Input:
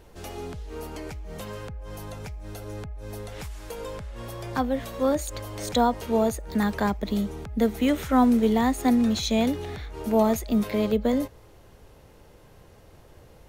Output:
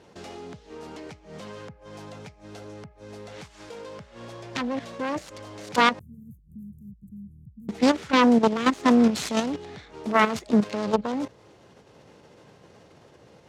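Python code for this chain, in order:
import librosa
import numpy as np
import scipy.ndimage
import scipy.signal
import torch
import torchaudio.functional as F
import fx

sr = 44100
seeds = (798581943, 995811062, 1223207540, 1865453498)

y = fx.self_delay(x, sr, depth_ms=0.86)
y = fx.cheby2_bandstop(y, sr, low_hz=720.0, high_hz=3900.0, order=4, stop_db=80, at=(5.99, 7.69))
y = fx.level_steps(y, sr, step_db=11)
y = scipy.signal.sosfilt(scipy.signal.cheby1(2, 1.0, [160.0, 6200.0], 'bandpass', fs=sr, output='sos'), y)
y = y * 10.0 ** (6.0 / 20.0)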